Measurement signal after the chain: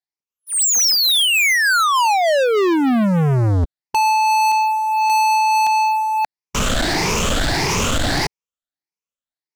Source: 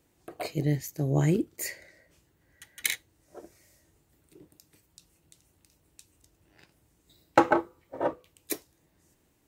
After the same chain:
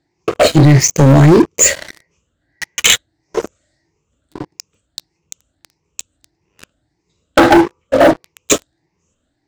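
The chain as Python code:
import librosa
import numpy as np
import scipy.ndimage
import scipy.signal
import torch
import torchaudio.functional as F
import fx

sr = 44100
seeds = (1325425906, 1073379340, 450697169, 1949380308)

p1 = fx.spec_ripple(x, sr, per_octave=0.79, drift_hz=1.6, depth_db=14)
p2 = fx.over_compress(p1, sr, threshold_db=-26.0, ratio=-0.5)
p3 = p1 + (p2 * librosa.db_to_amplitude(1.0))
p4 = scipy.signal.sosfilt(scipy.signal.butter(12, 7800.0, 'lowpass', fs=sr, output='sos'), p3)
p5 = fx.leveller(p4, sr, passes=5)
y = p5 * librosa.db_to_amplitude(-1.0)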